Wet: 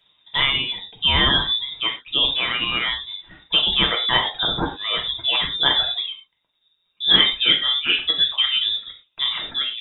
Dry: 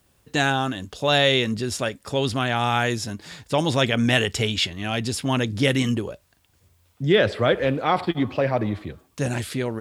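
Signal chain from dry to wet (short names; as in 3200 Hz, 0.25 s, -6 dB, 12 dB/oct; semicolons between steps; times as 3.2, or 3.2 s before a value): inverted band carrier 3700 Hz; reverb removal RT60 1.7 s; non-linear reverb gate 0.14 s falling, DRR 0.5 dB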